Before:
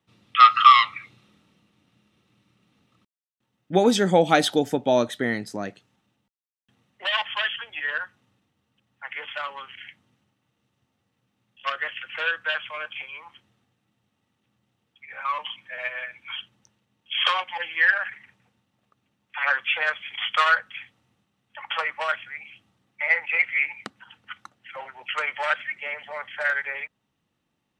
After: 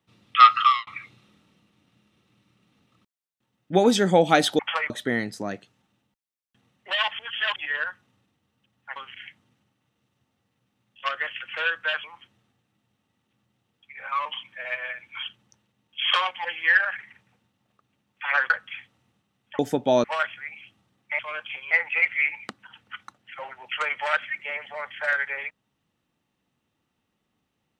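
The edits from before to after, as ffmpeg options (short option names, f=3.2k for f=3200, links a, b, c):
-filter_complex "[0:a]asplit=13[a][b][c][d][e][f][g][h][i][j][k][l][m];[a]atrim=end=0.87,asetpts=PTS-STARTPTS,afade=t=out:st=0.48:d=0.39[n];[b]atrim=start=0.87:end=4.592,asetpts=PTS-STARTPTS,afade=t=in:d=0.004:c=hsin[o];[c]atrim=start=21.618:end=21.932[p];[d]atrim=start=5.038:end=7.332[q];[e]atrim=start=7.328:end=7.702,asetpts=PTS-STARTPTS,areverse[r];[f]atrim=start=7.698:end=9.102[s];[g]atrim=start=9.568:end=12.652[t];[h]atrim=start=13.168:end=19.632[u];[i]atrim=start=20.528:end=21.622[v];[j]atrim=start=4.588:end=5.042[w];[k]atrim=start=21.928:end=23.082[x];[l]atrim=start=12.648:end=13.172[y];[m]atrim=start=23.078[z];[n][o]concat=n=2:v=0:a=1[aa];[aa][p]acrossfade=d=0.004:c1=hsin:c2=hsin[ab];[ab][q]acrossfade=d=0.004:c1=hsin:c2=hsin[ac];[ac][r]acrossfade=d=0.004:c1=hsin:c2=hsin[ad];[ad][s]acrossfade=d=0.004:c1=hsin:c2=hsin[ae];[ae][t]acrossfade=d=0.004:c1=hsin:c2=hsin[af];[af][u]acrossfade=d=0.004:c1=hsin:c2=hsin[ag];[ag][v]acrossfade=d=0.004:c1=hsin:c2=hsin[ah];[ah][w]acrossfade=d=0.004:c1=hsin:c2=hsin[ai];[ai][x]acrossfade=d=0.004:c1=hsin:c2=hsin[aj];[aj][y]acrossfade=d=0.004:c1=hsin:c2=hsin[ak];[ak][z]acrossfade=d=0.004:c1=hsin:c2=hsin"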